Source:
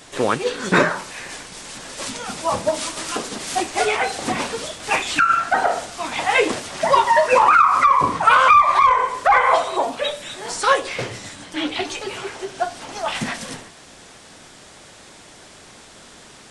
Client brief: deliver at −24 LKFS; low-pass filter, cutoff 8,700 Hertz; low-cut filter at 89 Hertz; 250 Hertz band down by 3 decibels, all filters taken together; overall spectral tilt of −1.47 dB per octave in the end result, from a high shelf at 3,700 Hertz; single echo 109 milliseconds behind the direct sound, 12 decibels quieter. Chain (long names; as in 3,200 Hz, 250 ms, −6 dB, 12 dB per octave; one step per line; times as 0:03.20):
high-pass filter 89 Hz
low-pass filter 8,700 Hz
parametric band 250 Hz −4 dB
high-shelf EQ 3,700 Hz −8.5 dB
single-tap delay 109 ms −12 dB
level −4.5 dB